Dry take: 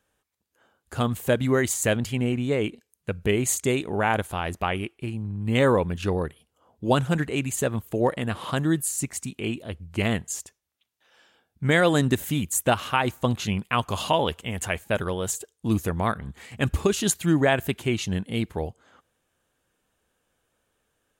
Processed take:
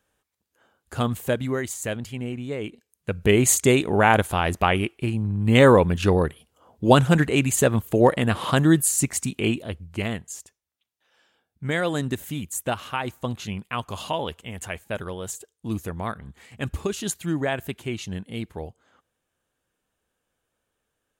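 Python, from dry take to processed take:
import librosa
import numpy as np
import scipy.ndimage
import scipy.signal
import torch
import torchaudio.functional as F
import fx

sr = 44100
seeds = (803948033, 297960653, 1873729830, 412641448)

y = fx.gain(x, sr, db=fx.line((1.13, 0.5), (1.66, -6.0), (2.6, -6.0), (3.38, 6.0), (9.48, 6.0), (10.17, -5.0)))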